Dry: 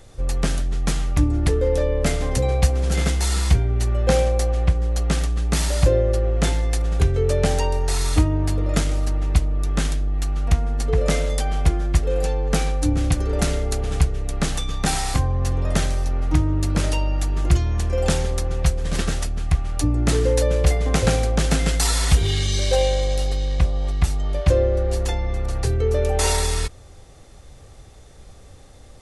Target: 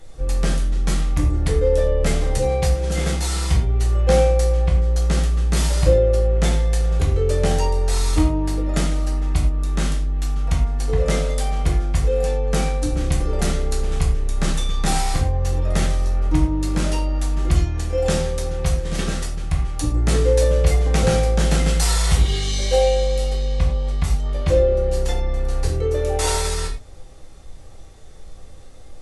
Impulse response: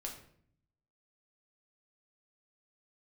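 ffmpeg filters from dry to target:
-filter_complex "[1:a]atrim=start_sample=2205,afade=type=out:start_time=0.16:duration=0.01,atrim=end_sample=7497,asetrate=40572,aresample=44100[link_01];[0:a][link_01]afir=irnorm=-1:irlink=0,volume=1.5dB"

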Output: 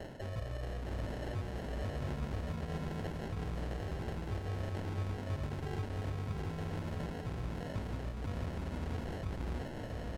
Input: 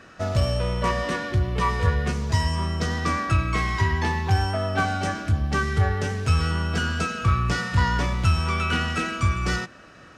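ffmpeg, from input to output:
ffmpeg -i in.wav -filter_complex "[0:a]lowpass=frequency=3600:width=0.5412,lowpass=frequency=3600:width=1.3066,equalizer=frequency=240:width=0.56:gain=-6.5,areverse,acompressor=threshold=-34dB:ratio=10,areverse,flanger=delay=18:depth=2.3:speed=0.28,acrossover=split=380[link_01][link_02];[link_02]aeval=exprs='(mod(112*val(0)+1,2)-1)/112':channel_layout=same[link_03];[link_01][link_03]amix=inputs=2:normalize=0,acrossover=split=160|990[link_04][link_05][link_06];[link_04]acompressor=threshold=-45dB:ratio=4[link_07];[link_05]acompressor=threshold=-52dB:ratio=4[link_08];[link_06]acompressor=threshold=-50dB:ratio=4[link_09];[link_07][link_08][link_09]amix=inputs=3:normalize=0,alimiter=level_in=15dB:limit=-24dB:level=0:latency=1:release=162,volume=-15dB,acrusher=samples=37:mix=1:aa=0.000001,aemphasis=mode=reproduction:type=50kf,aecho=1:1:667:0.631,volume=10dB" -ar 48000 -c:a libmp3lame -b:a 80k out.mp3

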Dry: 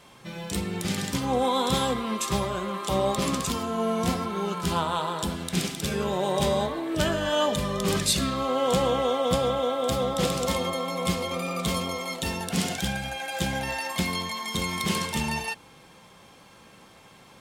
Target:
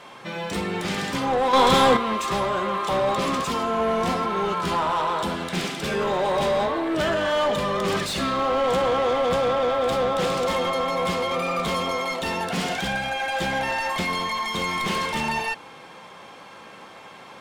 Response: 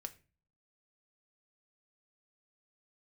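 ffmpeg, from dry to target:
-filter_complex "[0:a]asplit=2[link_01][link_02];[link_02]highpass=frequency=720:poles=1,volume=22dB,asoftclip=type=tanh:threshold=-11dB[link_03];[link_01][link_03]amix=inputs=2:normalize=0,lowpass=frequency=1600:poles=1,volume=-6dB,asettb=1/sr,asplit=3[link_04][link_05][link_06];[link_04]atrim=end=1.534[link_07];[link_05]atrim=start=1.53:end=1.97,asetpts=PTS-STARTPTS,afade=type=in:duration=0.004:curve=qsin,afade=type=out:start_time=0.436:duration=0.004:curve=qsin,acontrast=87[link_08];[link_06]atrim=start=1.966[link_09];[link_07][link_08]acrossfade=duration=0.004:curve1=hsin:curve2=qsin[link_10];[link_10][link_09]acrossfade=duration=0.004:curve1=qsin:curve2=hsin,volume=-2.5dB"

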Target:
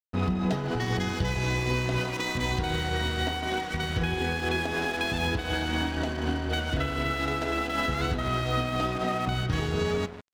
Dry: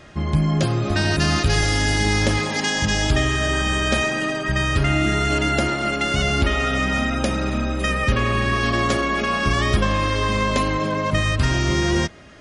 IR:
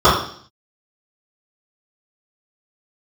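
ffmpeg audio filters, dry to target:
-filter_complex "[0:a]bandreject=frequency=63.51:width_type=h:width=4,bandreject=frequency=127.02:width_type=h:width=4,bandreject=frequency=190.53:width_type=h:width=4,asplit=2[link_01][link_02];[1:a]atrim=start_sample=2205[link_03];[link_02][link_03]afir=irnorm=-1:irlink=0,volume=-50dB[link_04];[link_01][link_04]amix=inputs=2:normalize=0,tremolo=f=3.3:d=0.38,lowpass=3200,asplit=2[link_05][link_06];[link_06]adelay=184,lowpass=frequency=1100:poles=1,volume=-10.5dB,asplit=2[link_07][link_08];[link_08]adelay=184,lowpass=frequency=1100:poles=1,volume=0.25,asplit=2[link_09][link_10];[link_10]adelay=184,lowpass=frequency=1100:poles=1,volume=0.25[link_11];[link_05][link_07][link_09][link_11]amix=inputs=4:normalize=0,asetrate=52920,aresample=44100,bandreject=frequency=2200:width=14,aeval=exprs='sgn(val(0))*max(abs(val(0))-0.02,0)':channel_layout=same,alimiter=limit=-19.5dB:level=0:latency=1:release=463,volume=2.5dB"

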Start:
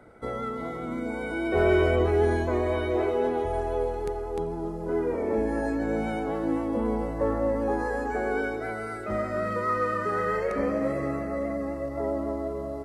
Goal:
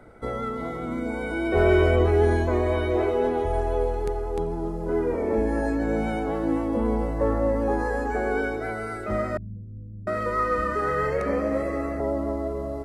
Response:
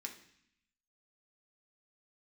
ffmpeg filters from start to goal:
-filter_complex "[0:a]lowshelf=frequency=60:gain=9.5,asettb=1/sr,asplit=3[link_01][link_02][link_03];[link_01]atrim=end=9.374[link_04];[link_02]atrim=start=9.37:end=12,asetpts=PTS-STARTPTS,afade=type=in:duration=0.004:curve=qsin,afade=type=out:start_time=2.626:duration=0.004:curve=qsin,acrossover=split=180[link_05][link_06];[link_06]adelay=700[link_07];[link_05][link_07]amix=inputs=2:normalize=0,atrim=end_sample=115983[link_08];[link_03]atrim=start=11.996[link_09];[link_04][link_08]acrossfade=duration=0.004:curve1=hsin:curve2=qsin[link_10];[link_10][link_09]acrossfade=duration=0.004:curve1=qsin:curve2=hsin,volume=2dB"

